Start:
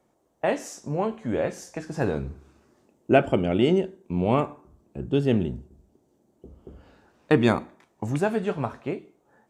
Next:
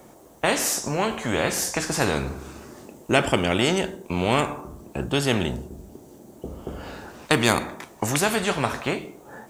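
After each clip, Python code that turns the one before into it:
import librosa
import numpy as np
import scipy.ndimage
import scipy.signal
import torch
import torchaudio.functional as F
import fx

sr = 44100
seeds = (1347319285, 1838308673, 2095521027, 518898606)

y = fx.high_shelf(x, sr, hz=9100.0, db=9.5)
y = fx.spectral_comp(y, sr, ratio=2.0)
y = y * 10.0 ** (1.0 / 20.0)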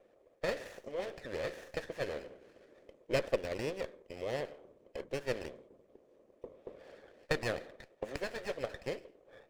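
y = fx.vowel_filter(x, sr, vowel='e')
y = fx.hpss(y, sr, part='harmonic', gain_db=-13)
y = fx.running_max(y, sr, window=9)
y = y * 10.0 ** (1.0 / 20.0)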